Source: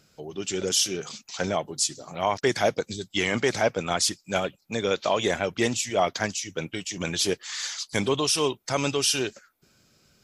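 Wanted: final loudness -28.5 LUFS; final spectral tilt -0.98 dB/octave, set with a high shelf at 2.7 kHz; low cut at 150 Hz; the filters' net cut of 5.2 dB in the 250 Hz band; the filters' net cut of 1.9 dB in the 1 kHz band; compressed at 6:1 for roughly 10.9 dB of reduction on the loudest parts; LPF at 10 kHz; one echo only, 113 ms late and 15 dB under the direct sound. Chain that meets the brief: high-pass 150 Hz; low-pass 10 kHz; peaking EQ 250 Hz -6.5 dB; peaking EQ 1 kHz -3.5 dB; treble shelf 2.7 kHz +8.5 dB; compression 6:1, threshold -25 dBFS; delay 113 ms -15 dB; trim +0.5 dB

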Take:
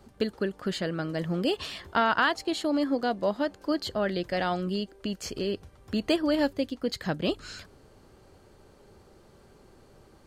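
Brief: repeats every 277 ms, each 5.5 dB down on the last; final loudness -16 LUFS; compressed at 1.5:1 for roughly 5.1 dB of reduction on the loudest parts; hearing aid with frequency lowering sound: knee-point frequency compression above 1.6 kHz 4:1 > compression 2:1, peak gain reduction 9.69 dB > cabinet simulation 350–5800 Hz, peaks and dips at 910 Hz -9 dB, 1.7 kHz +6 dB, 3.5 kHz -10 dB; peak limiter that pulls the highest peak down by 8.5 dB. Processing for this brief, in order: compression 1.5:1, threshold -34 dBFS; peak limiter -25 dBFS; feedback delay 277 ms, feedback 53%, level -5.5 dB; knee-point frequency compression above 1.6 kHz 4:1; compression 2:1, threshold -44 dBFS; cabinet simulation 350–5800 Hz, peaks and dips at 910 Hz -9 dB, 1.7 kHz +6 dB, 3.5 kHz -10 dB; trim +26.5 dB

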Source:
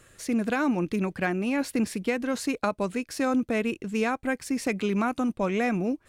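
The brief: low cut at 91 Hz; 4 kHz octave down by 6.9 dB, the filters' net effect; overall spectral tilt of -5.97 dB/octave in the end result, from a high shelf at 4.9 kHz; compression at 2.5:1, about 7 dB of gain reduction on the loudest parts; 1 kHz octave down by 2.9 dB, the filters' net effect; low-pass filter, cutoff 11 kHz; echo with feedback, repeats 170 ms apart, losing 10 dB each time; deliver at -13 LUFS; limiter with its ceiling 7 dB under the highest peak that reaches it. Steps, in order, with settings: high-pass 91 Hz; low-pass 11 kHz; peaking EQ 1 kHz -3.5 dB; peaking EQ 4 kHz -7.5 dB; treble shelf 4.9 kHz -4 dB; compression 2.5:1, threshold -32 dBFS; peak limiter -27 dBFS; feedback delay 170 ms, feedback 32%, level -10 dB; trim +22.5 dB

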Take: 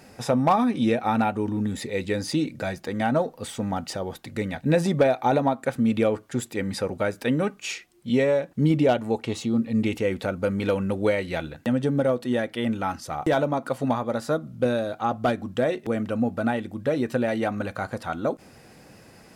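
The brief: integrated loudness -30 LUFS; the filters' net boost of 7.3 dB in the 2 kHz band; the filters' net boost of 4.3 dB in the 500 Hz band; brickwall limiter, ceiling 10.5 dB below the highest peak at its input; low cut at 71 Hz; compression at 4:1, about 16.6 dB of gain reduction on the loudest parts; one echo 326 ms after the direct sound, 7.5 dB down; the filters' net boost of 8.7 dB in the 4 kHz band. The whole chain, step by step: high-pass 71 Hz; peaking EQ 500 Hz +4.5 dB; peaking EQ 2 kHz +7 dB; peaking EQ 4 kHz +8.5 dB; compression 4:1, threshold -32 dBFS; peak limiter -24.5 dBFS; delay 326 ms -7.5 dB; trim +5.5 dB

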